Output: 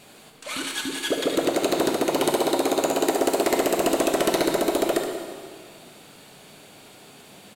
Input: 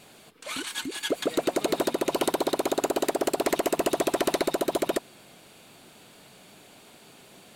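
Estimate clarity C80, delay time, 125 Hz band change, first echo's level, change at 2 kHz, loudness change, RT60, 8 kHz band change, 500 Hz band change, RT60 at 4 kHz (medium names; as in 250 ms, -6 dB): 5.5 dB, 73 ms, +4.5 dB, -9.0 dB, +4.0 dB, +4.0 dB, 1.9 s, +4.5 dB, +4.0 dB, 1.8 s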